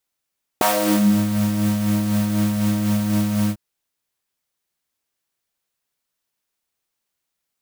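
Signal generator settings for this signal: synth patch with tremolo G#3, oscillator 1 triangle, oscillator 2 saw, interval +7 st, detune 16 cents, oscillator 2 level -11 dB, sub -7 dB, noise -10 dB, filter highpass, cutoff 110 Hz, Q 3.6, filter envelope 3 oct, filter decay 0.58 s, filter sustain 10%, attack 1.6 ms, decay 0.53 s, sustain -11 dB, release 0.06 s, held 2.89 s, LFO 4 Hz, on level 4 dB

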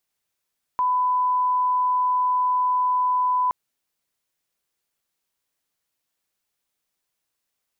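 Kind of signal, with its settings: line-up tone -18 dBFS 2.72 s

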